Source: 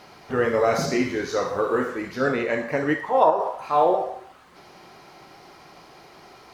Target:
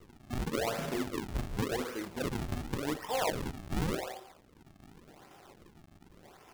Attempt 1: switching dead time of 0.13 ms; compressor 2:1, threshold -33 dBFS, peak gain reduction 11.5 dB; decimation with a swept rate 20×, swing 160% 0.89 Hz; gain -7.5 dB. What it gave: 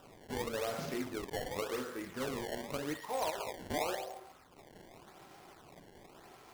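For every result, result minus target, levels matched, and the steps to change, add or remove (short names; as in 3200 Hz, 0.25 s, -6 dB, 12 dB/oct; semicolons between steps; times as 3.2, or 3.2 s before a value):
decimation with a swept rate: distortion -11 dB; compressor: peak gain reduction +4 dB
change: decimation with a swept rate 51×, swing 160% 0.89 Hz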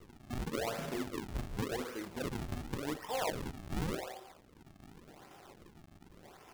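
compressor: peak gain reduction +4 dB
change: compressor 2:1, threshold -25.5 dBFS, peak gain reduction 7.5 dB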